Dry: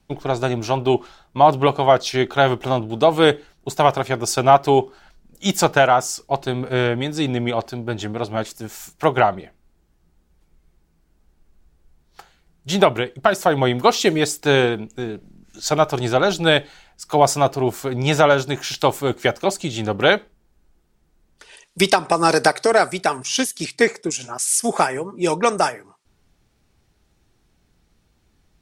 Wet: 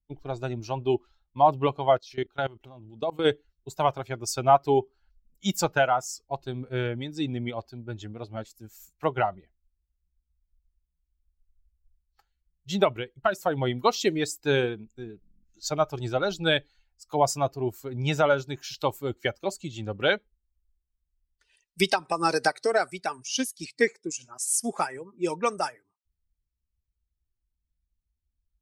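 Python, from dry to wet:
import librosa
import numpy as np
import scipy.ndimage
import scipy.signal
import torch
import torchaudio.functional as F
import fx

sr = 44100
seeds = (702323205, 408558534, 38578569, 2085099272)

y = fx.bin_expand(x, sr, power=1.5)
y = fx.level_steps(y, sr, step_db=21, at=(1.97, 3.24), fade=0.02)
y = F.gain(torch.from_numpy(y), -5.0).numpy()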